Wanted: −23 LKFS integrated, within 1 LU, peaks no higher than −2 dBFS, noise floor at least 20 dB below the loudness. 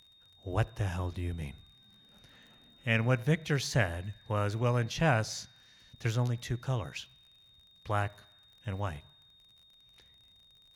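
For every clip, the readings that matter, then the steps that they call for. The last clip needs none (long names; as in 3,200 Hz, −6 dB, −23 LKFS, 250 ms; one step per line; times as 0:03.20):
crackle rate 41 per second; interfering tone 3,700 Hz; level of the tone −59 dBFS; integrated loudness −32.5 LKFS; sample peak −13.0 dBFS; target loudness −23.0 LKFS
→ click removal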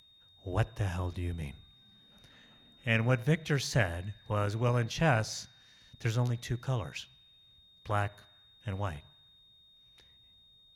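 crackle rate 0.28 per second; interfering tone 3,700 Hz; level of the tone −59 dBFS
→ notch filter 3,700 Hz, Q 30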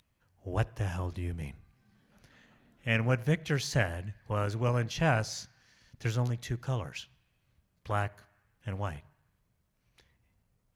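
interfering tone none found; integrated loudness −32.5 LKFS; sample peak −13.0 dBFS; target loudness −23.0 LKFS
→ level +9.5 dB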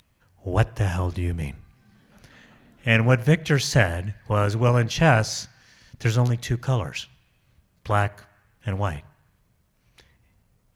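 integrated loudness −23.0 LKFS; sample peak −3.5 dBFS; background noise floor −66 dBFS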